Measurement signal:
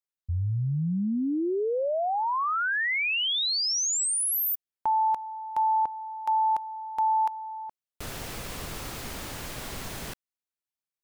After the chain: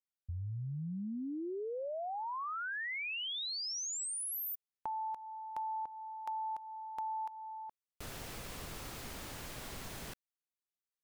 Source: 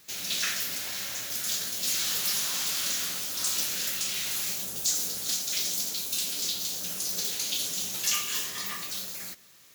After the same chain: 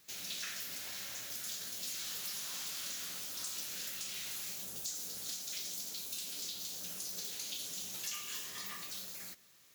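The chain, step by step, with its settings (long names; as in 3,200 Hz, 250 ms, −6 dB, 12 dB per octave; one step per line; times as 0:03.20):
downward compressor 3 to 1, threshold −31 dBFS
level −8 dB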